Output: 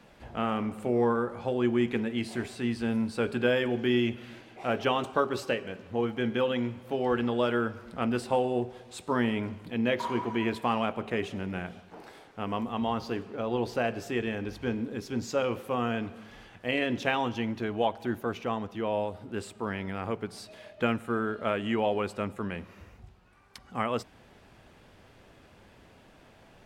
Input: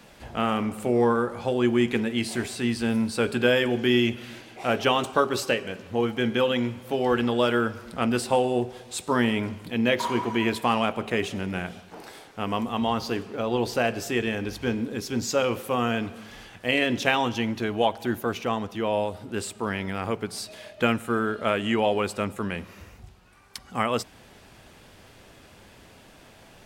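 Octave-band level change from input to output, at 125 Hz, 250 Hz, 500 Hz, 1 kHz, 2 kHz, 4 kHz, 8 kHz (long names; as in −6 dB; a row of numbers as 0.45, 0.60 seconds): −4.0, −4.0, −4.0, −4.5, −6.0, −8.0, −12.0 decibels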